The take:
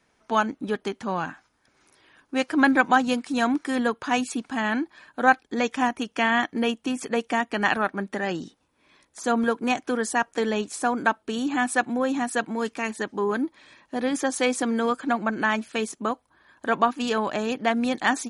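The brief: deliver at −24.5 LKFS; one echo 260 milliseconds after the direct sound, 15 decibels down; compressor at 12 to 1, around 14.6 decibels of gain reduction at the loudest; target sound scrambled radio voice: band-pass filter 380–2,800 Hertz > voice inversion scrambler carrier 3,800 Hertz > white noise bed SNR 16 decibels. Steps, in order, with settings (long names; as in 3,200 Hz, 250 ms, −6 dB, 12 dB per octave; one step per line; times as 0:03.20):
downward compressor 12 to 1, threshold −28 dBFS
band-pass filter 380–2,800 Hz
single-tap delay 260 ms −15 dB
voice inversion scrambler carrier 3,800 Hz
white noise bed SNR 16 dB
level +9 dB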